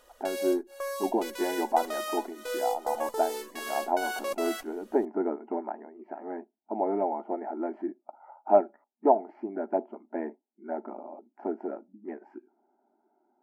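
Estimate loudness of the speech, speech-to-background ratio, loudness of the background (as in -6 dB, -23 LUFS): -31.5 LUFS, 3.5 dB, -35.0 LUFS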